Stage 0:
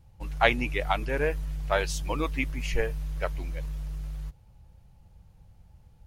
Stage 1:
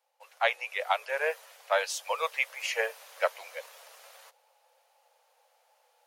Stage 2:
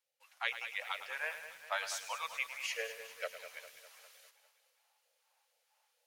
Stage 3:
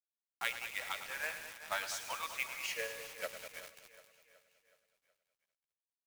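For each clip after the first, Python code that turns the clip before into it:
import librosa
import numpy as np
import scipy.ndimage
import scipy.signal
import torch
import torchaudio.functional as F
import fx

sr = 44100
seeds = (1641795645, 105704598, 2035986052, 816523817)

y1 = scipy.signal.sosfilt(scipy.signal.butter(12, 490.0, 'highpass', fs=sr, output='sos'), x)
y1 = fx.rider(y1, sr, range_db=5, speed_s=0.5)
y2 = fx.phaser_stages(y1, sr, stages=2, low_hz=390.0, high_hz=1000.0, hz=2.2, feedback_pct=5)
y2 = fx.echo_feedback(y2, sr, ms=201, feedback_pct=57, wet_db=-12.0)
y2 = fx.echo_crushed(y2, sr, ms=107, feedback_pct=35, bits=8, wet_db=-11.0)
y2 = F.gain(torch.from_numpy(y2), -5.5).numpy()
y3 = fx.comb_fb(y2, sr, f0_hz=280.0, decay_s=0.86, harmonics='all', damping=0.0, mix_pct=60)
y3 = fx.quant_companded(y3, sr, bits=4)
y3 = fx.echo_feedback(y3, sr, ms=371, feedback_pct=53, wet_db=-16.5)
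y3 = F.gain(torch.from_numpy(y3), 6.0).numpy()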